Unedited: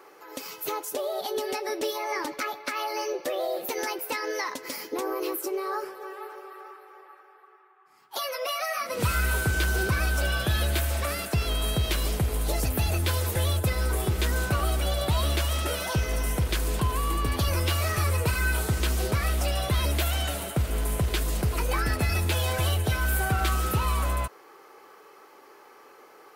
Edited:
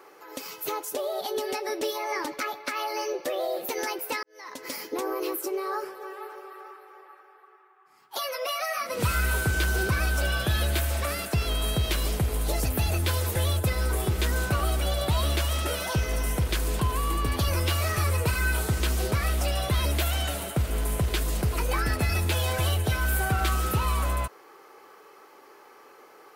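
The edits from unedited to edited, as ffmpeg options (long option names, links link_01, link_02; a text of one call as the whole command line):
ffmpeg -i in.wav -filter_complex "[0:a]asplit=2[link_01][link_02];[link_01]atrim=end=4.23,asetpts=PTS-STARTPTS,afade=type=out:start_time=4.226:duration=0.004:curve=hsin[link_03];[link_02]atrim=start=4.23,asetpts=PTS-STARTPTS,afade=type=in:duration=0.41:curve=qua[link_04];[link_03][link_04]concat=n=2:v=0:a=1" out.wav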